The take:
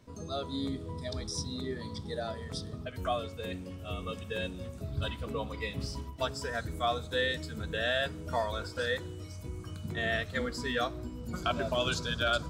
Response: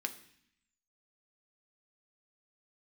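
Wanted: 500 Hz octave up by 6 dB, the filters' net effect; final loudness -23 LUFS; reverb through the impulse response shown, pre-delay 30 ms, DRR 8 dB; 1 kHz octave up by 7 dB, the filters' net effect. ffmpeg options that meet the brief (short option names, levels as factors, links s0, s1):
-filter_complex "[0:a]equalizer=f=500:t=o:g=4.5,equalizer=f=1000:t=o:g=8.5,asplit=2[s0][s1];[1:a]atrim=start_sample=2205,adelay=30[s2];[s1][s2]afir=irnorm=-1:irlink=0,volume=0.355[s3];[s0][s3]amix=inputs=2:normalize=0,volume=2.24"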